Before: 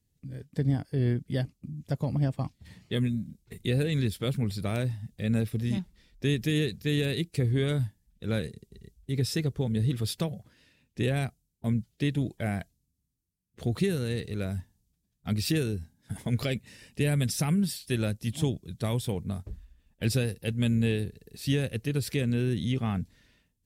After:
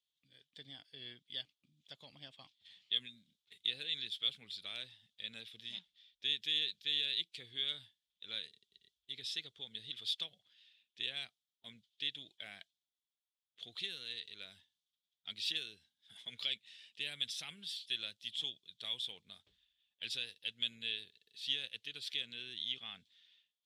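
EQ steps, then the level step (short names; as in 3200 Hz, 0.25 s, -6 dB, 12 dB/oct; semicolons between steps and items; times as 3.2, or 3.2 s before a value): band-pass 3400 Hz, Q 6.7; +7.0 dB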